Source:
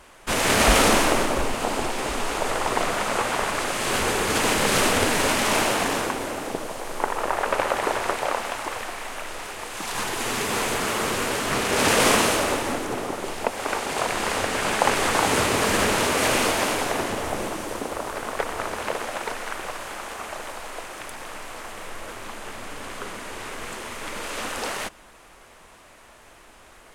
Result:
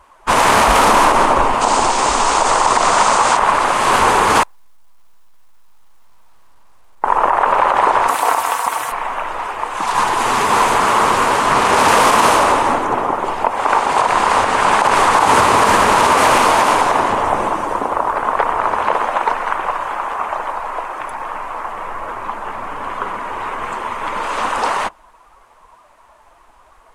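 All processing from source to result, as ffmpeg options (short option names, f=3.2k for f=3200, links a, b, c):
-filter_complex "[0:a]asettb=1/sr,asplit=3[a][b][c];[a]atrim=end=1.614[d];[b]atrim=start=1.61:end=3.37,asetpts=PTS-STARTPTS,afade=t=in:d=0.004:c=qsin,afade=t=out:st=1.756:d=0.004:c=qsin,lowpass=f=8.3k:w=0.5412,lowpass=f=8.3k:w=1.3066,bass=f=250:g=0,treble=f=4k:g=12[e];[c]atrim=start=3.366[f];[d][e]acrossfade=d=0.004:c1=hsin:c2=qsin[g];[g][f]acrossfade=d=0.004:c1=qsin:c2=hsin,asettb=1/sr,asplit=3[h][i][j];[h]atrim=end=4.434[k];[i]atrim=start=4.43:end=7.04,asetpts=PTS-STARTPTS,afade=t=in:d=0.004:c=qsin,afade=t=out:st=2.606:d=0.004:c=qsin,aeval=exprs='abs(val(0))':c=same,aeval=exprs='(tanh(63.1*val(0)+0.7)-tanh(0.7))/63.1':c=same[l];[j]atrim=start=7.036[m];[k][l]acrossfade=d=0.004:c1=hsin:c2=qsin[n];[n][m]acrossfade=d=0.004:c1=qsin:c2=hsin,asettb=1/sr,asplit=3[o][p][q];[o]atrim=end=8.084[r];[p]atrim=start=8.08:end=8.92,asetpts=PTS-STARTPTS,afade=t=in:d=0.004:c=qsin,afade=t=out:st=0.836:d=0.004:c=qsin,aemphasis=mode=production:type=bsi,aecho=1:1:4.9:0.56,atrim=end_sample=37044,aeval=exprs='val(0)*sin(2*PI*130*n/s)':c=same[s];[q]atrim=start=8.916[t];[r][s]acrossfade=d=0.004:c1=hsin:c2=qsin[u];[u][t]acrossfade=d=0.004:c1=qsin:c2=hsin,afftdn=nr=13:nf=-40,equalizer=f=990:w=1.5:g=14,alimiter=level_in=6dB:limit=-1dB:release=50:level=0:latency=1,volume=-1dB"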